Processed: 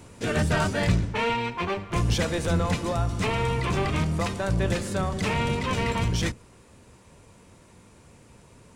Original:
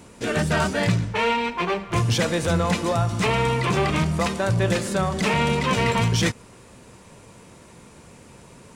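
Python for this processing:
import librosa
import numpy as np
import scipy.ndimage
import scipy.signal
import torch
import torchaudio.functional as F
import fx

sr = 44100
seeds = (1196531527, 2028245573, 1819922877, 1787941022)

y = fx.octave_divider(x, sr, octaves=1, level_db=-1.0)
y = fx.rider(y, sr, range_db=10, speed_s=2.0)
y = y * 10.0 ** (-5.0 / 20.0)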